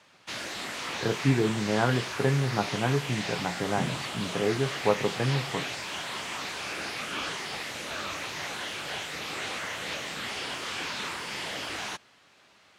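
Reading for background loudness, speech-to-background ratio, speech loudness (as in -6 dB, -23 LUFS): -33.5 LUFS, 4.5 dB, -29.0 LUFS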